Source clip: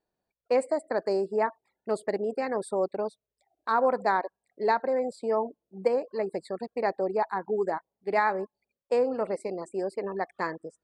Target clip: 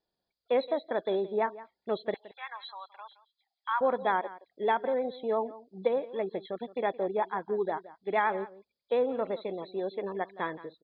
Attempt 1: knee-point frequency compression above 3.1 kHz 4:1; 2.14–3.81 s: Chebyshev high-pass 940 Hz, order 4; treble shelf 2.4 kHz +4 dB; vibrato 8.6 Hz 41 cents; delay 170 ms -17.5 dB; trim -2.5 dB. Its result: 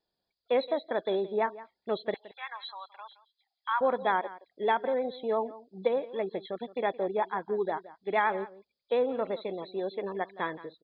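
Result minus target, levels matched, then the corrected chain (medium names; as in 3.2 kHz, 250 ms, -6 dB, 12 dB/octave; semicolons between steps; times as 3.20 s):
4 kHz band +2.5 dB
knee-point frequency compression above 3.1 kHz 4:1; 2.14–3.81 s: Chebyshev high-pass 940 Hz, order 4; vibrato 8.6 Hz 41 cents; delay 170 ms -17.5 dB; trim -2.5 dB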